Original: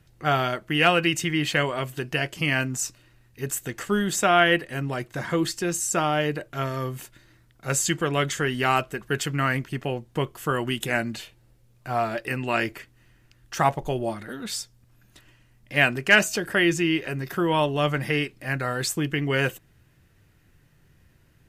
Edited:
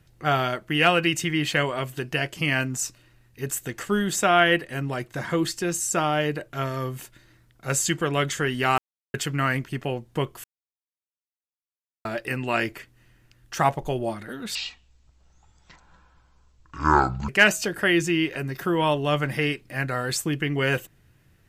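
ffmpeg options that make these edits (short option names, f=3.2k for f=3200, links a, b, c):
-filter_complex "[0:a]asplit=7[a][b][c][d][e][f][g];[a]atrim=end=8.78,asetpts=PTS-STARTPTS,afade=t=out:st=8.776:d=0.004:c=hsin[h];[b]atrim=start=8.78:end=9.14,asetpts=PTS-STARTPTS,volume=0[i];[c]atrim=start=9.14:end=10.44,asetpts=PTS-STARTPTS,afade=t=in:d=0.004:c=hsin,afade=t=out:st=1.296:d=0.004:c=hsin[j];[d]atrim=start=10.44:end=12.05,asetpts=PTS-STARTPTS,volume=0[k];[e]atrim=start=12.05:end=14.554,asetpts=PTS-STARTPTS,afade=t=in:d=0.004:c=hsin[l];[f]atrim=start=14.55:end=16,asetpts=PTS-STARTPTS,asetrate=23373,aresample=44100[m];[g]atrim=start=15.996[n];[h][i][j][k][l]concat=n=5:v=0:a=1[o];[o][m]acrossfade=d=0.004:c1=hsin:c2=hsin[p];[p][n]acrossfade=d=0.004:c1=hsin:c2=hsin"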